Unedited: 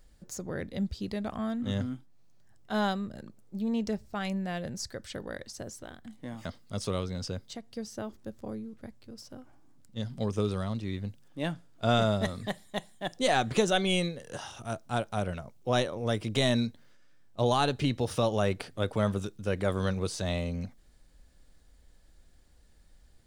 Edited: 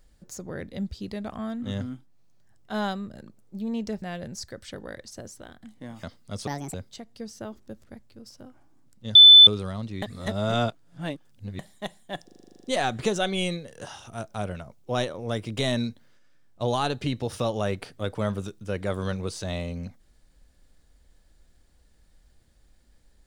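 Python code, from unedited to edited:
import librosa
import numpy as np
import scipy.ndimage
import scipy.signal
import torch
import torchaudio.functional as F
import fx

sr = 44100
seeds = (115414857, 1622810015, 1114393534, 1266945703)

y = fx.edit(x, sr, fx.cut(start_s=4.02, length_s=0.42),
    fx.speed_span(start_s=6.89, length_s=0.42, speed=1.55),
    fx.cut(start_s=8.42, length_s=0.35),
    fx.bleep(start_s=10.07, length_s=0.32, hz=3510.0, db=-6.5),
    fx.reverse_span(start_s=10.94, length_s=1.57),
    fx.stutter(start_s=13.16, slice_s=0.04, count=11),
    fx.cut(start_s=14.82, length_s=0.26), tone=tone)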